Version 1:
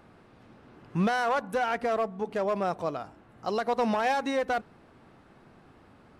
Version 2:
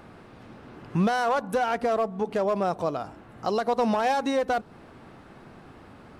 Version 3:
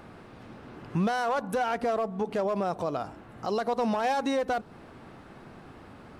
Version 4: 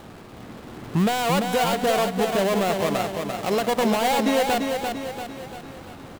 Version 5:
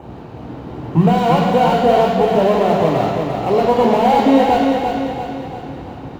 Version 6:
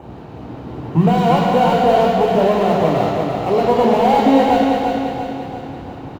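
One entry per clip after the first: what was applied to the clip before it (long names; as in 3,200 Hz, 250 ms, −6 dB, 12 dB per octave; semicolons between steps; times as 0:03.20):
dynamic equaliser 2,000 Hz, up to −5 dB, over −44 dBFS, Q 1.3; in parallel at +3 dB: downward compressor, threshold −35 dBFS, peak gain reduction 12 dB
brickwall limiter −20 dBFS, peak gain reduction 5 dB
gap after every zero crossing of 0.23 ms; repeating echo 343 ms, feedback 50%, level −5 dB; level +6 dB
convolution reverb RT60 1.1 s, pre-delay 3 ms, DRR 1 dB; level −8.5 dB
single-tap delay 199 ms −8 dB; level −1 dB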